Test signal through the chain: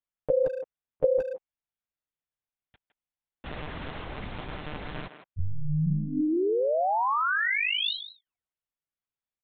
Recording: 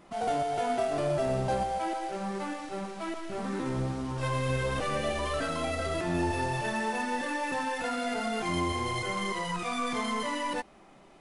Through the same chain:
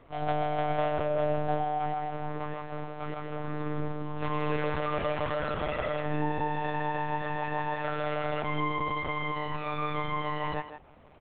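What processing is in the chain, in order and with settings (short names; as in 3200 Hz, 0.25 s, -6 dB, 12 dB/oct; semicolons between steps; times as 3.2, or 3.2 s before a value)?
high shelf 3000 Hz -6.5 dB; monotone LPC vocoder at 8 kHz 150 Hz; speakerphone echo 0.16 s, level -9 dB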